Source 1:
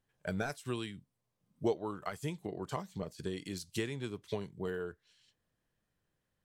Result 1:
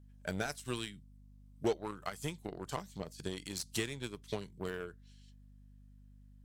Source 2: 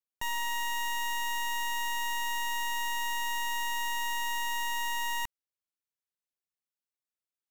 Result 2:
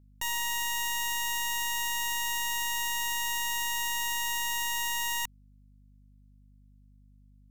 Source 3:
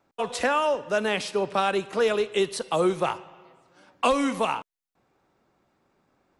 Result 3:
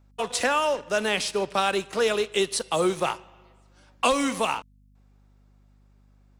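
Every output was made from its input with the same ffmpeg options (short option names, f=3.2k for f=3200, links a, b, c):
-filter_complex "[0:a]crystalizer=i=3:c=0,asplit=2[a][b];[b]acrusher=bits=4:mix=0:aa=0.5,volume=-3.5dB[c];[a][c]amix=inputs=2:normalize=0,highshelf=f=10k:g=-10.5,aeval=exprs='val(0)+0.00282*(sin(2*PI*50*n/s)+sin(2*PI*2*50*n/s)/2+sin(2*PI*3*50*n/s)/3+sin(2*PI*4*50*n/s)/4+sin(2*PI*5*50*n/s)/5)':c=same,volume=-5.5dB"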